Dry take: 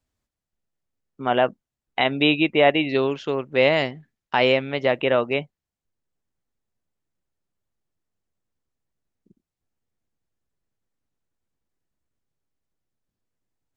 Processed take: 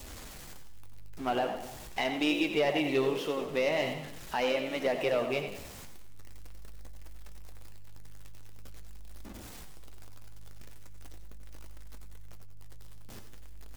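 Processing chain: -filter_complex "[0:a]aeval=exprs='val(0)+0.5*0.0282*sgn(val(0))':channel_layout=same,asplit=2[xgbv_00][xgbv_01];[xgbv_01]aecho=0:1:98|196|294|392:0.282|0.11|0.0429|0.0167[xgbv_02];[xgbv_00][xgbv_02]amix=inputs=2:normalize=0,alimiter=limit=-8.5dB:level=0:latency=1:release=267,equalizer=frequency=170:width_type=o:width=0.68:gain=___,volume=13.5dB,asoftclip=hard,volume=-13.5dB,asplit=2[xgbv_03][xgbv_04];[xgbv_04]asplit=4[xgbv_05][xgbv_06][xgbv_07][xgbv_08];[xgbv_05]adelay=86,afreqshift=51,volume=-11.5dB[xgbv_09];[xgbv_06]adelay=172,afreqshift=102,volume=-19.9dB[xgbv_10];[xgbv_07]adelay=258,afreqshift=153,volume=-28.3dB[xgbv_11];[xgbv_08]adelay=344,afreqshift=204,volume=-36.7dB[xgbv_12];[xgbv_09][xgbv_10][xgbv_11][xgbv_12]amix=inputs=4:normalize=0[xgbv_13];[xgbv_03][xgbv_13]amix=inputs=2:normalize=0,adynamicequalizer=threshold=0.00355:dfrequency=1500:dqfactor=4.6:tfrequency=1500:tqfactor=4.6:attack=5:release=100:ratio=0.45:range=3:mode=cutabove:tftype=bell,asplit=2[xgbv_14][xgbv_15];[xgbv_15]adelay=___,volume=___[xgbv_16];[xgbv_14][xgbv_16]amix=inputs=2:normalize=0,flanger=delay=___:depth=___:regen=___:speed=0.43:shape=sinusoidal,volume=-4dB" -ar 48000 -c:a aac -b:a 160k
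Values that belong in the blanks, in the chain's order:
-4, 20, -14dB, 3.4, 7.9, -47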